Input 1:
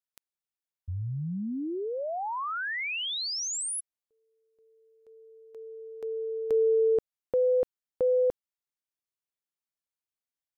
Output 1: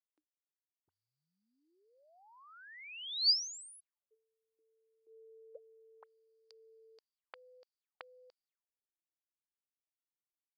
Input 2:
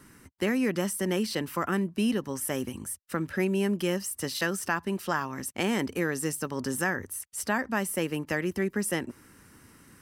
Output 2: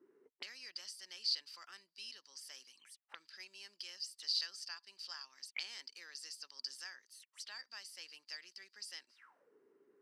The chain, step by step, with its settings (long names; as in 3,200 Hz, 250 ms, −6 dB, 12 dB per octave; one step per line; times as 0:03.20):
envelope filter 300–4,700 Hz, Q 14, up, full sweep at −31.5 dBFS
meter weighting curve A
level +8.5 dB